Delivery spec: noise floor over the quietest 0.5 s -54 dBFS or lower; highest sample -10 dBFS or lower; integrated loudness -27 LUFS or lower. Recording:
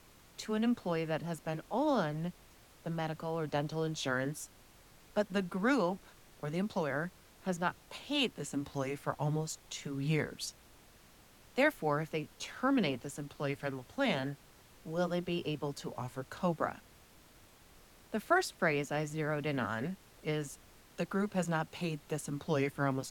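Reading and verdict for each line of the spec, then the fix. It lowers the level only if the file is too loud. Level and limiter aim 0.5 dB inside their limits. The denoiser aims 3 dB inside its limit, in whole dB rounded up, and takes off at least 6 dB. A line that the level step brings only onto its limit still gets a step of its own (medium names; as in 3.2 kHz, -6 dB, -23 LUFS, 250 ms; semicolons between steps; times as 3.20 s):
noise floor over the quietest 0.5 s -60 dBFS: pass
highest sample -15.5 dBFS: pass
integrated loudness -35.5 LUFS: pass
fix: none needed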